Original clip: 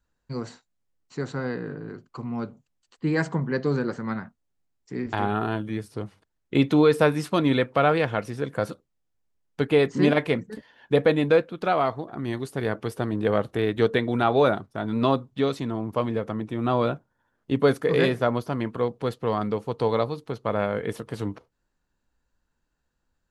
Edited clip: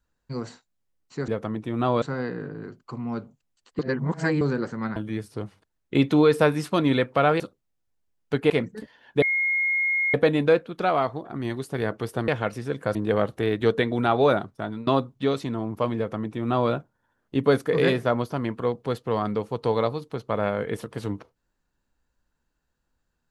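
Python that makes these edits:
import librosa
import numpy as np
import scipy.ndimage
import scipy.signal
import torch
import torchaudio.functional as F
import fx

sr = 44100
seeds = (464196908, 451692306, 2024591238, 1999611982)

y = fx.edit(x, sr, fx.reverse_span(start_s=3.05, length_s=0.62),
    fx.cut(start_s=4.22, length_s=1.34),
    fx.move(start_s=8.0, length_s=0.67, to_s=13.11),
    fx.cut(start_s=9.77, length_s=0.48),
    fx.insert_tone(at_s=10.97, length_s=0.92, hz=2150.0, db=-20.5),
    fx.fade_out_to(start_s=14.77, length_s=0.26, floor_db=-19.0),
    fx.duplicate(start_s=16.13, length_s=0.74, to_s=1.28), tone=tone)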